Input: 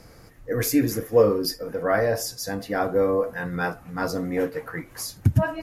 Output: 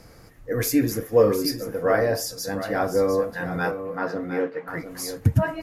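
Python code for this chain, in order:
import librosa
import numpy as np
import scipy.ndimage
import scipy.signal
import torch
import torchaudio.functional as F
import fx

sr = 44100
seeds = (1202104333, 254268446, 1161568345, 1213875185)

y = fx.bandpass_edges(x, sr, low_hz=230.0, high_hz=2800.0, at=(3.71, 4.68))
y = y + 10.0 ** (-10.0 / 20.0) * np.pad(y, (int(705 * sr / 1000.0), 0))[:len(y)]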